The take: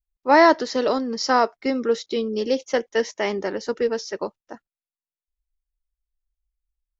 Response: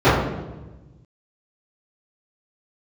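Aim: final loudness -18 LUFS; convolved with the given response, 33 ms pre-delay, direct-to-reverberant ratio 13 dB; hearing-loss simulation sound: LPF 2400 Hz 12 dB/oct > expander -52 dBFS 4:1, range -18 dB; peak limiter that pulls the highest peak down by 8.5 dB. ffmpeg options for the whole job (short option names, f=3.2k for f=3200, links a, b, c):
-filter_complex "[0:a]alimiter=limit=-11dB:level=0:latency=1,asplit=2[a][b];[1:a]atrim=start_sample=2205,adelay=33[c];[b][c]afir=irnorm=-1:irlink=0,volume=-40.5dB[d];[a][d]amix=inputs=2:normalize=0,lowpass=2.4k,agate=range=-18dB:threshold=-52dB:ratio=4,volume=6.5dB"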